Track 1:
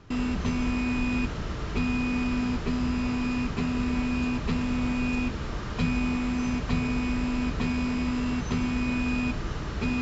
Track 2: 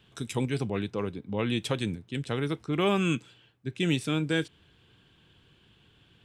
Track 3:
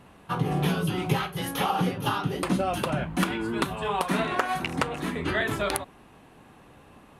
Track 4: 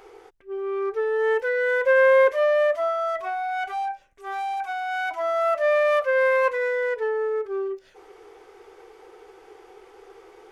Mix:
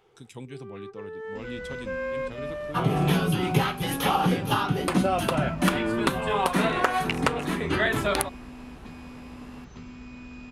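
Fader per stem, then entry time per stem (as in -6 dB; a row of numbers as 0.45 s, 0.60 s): -15.5 dB, -11.5 dB, +2.5 dB, -15.0 dB; 1.25 s, 0.00 s, 2.45 s, 0.00 s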